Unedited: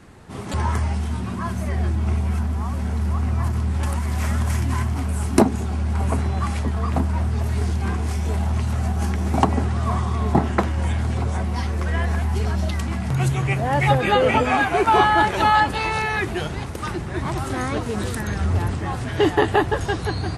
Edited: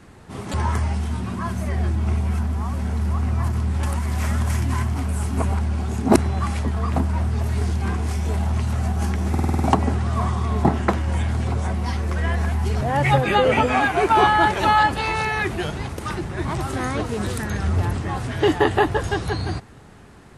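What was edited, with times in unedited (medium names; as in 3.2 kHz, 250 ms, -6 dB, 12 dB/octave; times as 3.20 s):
5.37–6.17 s: reverse
9.30 s: stutter 0.05 s, 7 plays
12.51–13.58 s: delete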